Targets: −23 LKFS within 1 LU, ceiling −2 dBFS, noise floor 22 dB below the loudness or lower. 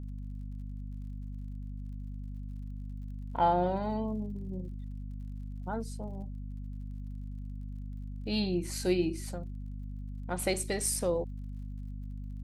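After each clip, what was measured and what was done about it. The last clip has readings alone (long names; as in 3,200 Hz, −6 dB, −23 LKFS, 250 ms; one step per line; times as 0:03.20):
crackle rate 51 per second; mains hum 50 Hz; hum harmonics up to 250 Hz; level of the hum −37 dBFS; integrated loudness −36.0 LKFS; sample peak −15.0 dBFS; target loudness −23.0 LKFS
→ click removal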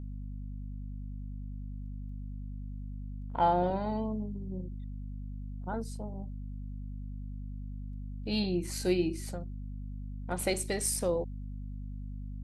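crackle rate 0.32 per second; mains hum 50 Hz; hum harmonics up to 300 Hz; level of the hum −37 dBFS
→ hum removal 50 Hz, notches 6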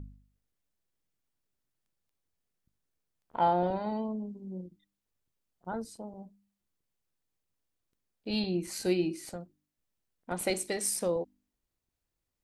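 mains hum none found; integrated loudness −32.5 LKFS; sample peak −15.5 dBFS; target loudness −23.0 LKFS
→ level +9.5 dB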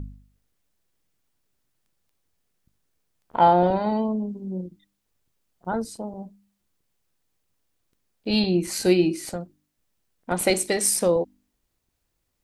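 integrated loudness −23.0 LKFS; sample peak −6.0 dBFS; background noise floor −76 dBFS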